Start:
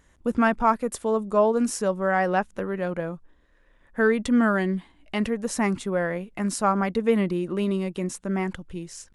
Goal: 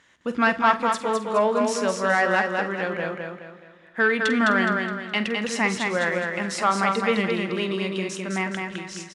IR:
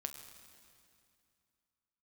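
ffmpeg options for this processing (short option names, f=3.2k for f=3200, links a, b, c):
-filter_complex "[0:a]tiltshelf=f=1.3k:g=-8.5,asoftclip=type=tanh:threshold=-15.5dB,highpass=130,lowpass=3.8k,aecho=1:1:209|418|627|836|1045:0.631|0.246|0.096|0.0374|0.0146,asplit=2[a][b];[1:a]atrim=start_sample=2205,adelay=47[c];[b][c]afir=irnorm=-1:irlink=0,volume=-10.5dB[d];[a][d]amix=inputs=2:normalize=0,volume=5dB"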